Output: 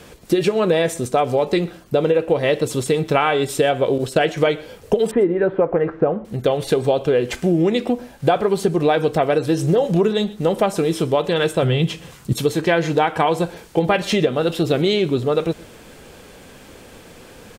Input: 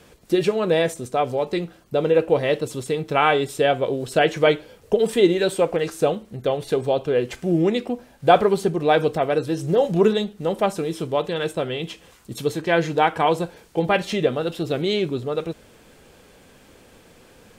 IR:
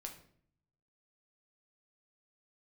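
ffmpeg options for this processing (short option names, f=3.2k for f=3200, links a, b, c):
-filter_complex "[0:a]asettb=1/sr,asplit=3[a][b][c];[a]atrim=end=5.114[d];[b]atrim=start=5.11:end=6.25,asetpts=PTS-STARTPTS,afade=t=in:d=0.004:c=qsin,afade=t=out:st=1.136:d=0.004:c=qsin,lowpass=f=1.7k:w=0.5412,lowpass=f=1.7k:w=1.3066[e];[c]atrim=start=6.246[f];[d][e]acrossfade=d=0.004:c1=hsin:c2=qsin[g];[g][f]acrossfade=d=0.004:c1=qsin:c2=hsin,asettb=1/sr,asplit=3[h][i][j];[h]atrim=end=11.624[k];[i]atrim=start=11.62:end=12.33,asetpts=PTS-STARTPTS,afade=t=in:d=0.004:c=qsin,afade=t=out:st=0.706:d=0.004:c=qsin,equalizer=f=140:t=o:w=0.77:g=13.5[l];[j]atrim=start=12.326[m];[k][l]acrossfade=d=0.004:c1=hsin:c2=qsin[n];[n][m]acrossfade=d=0.004:c1=qsin:c2=hsin,acompressor=threshold=-21dB:ratio=10,asettb=1/sr,asplit=3[o][p][q];[o]atrim=end=3.984[r];[p]atrim=start=3.98:end=4.38,asetpts=PTS-STARTPTS,afade=t=in:d=0.004:c=qsin,afade=t=out:st=0.396:d=0.004:c=qsin,agate=range=-33dB:threshold=-27dB:ratio=3:detection=peak[s];[q]atrim=start=4.376[t];[r][s]acrossfade=d=0.004:c1=hsin:c2=qsin[u];[u][t]acrossfade=d=0.004:c1=qsin:c2=hsin,aecho=1:1:123:0.075,volume=8dB"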